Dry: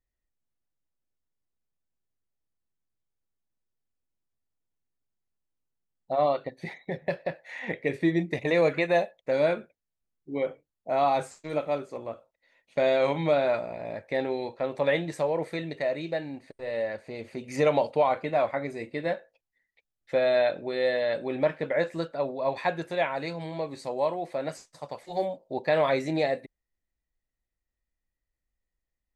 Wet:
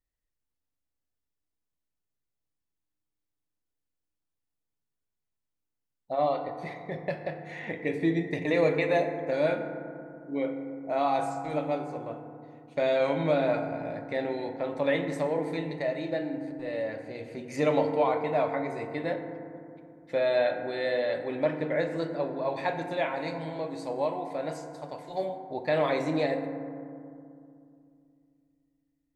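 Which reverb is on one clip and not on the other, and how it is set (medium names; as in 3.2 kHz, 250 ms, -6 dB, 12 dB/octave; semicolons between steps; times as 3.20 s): FDN reverb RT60 2.5 s, low-frequency decay 1.45×, high-frequency decay 0.3×, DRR 5 dB; trim -3 dB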